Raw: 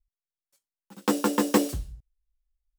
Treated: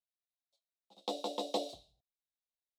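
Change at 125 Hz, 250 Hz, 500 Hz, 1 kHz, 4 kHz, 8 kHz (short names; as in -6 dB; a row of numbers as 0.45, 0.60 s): under -25 dB, -20.5 dB, -10.0 dB, -10.5 dB, -5.0 dB, -18.5 dB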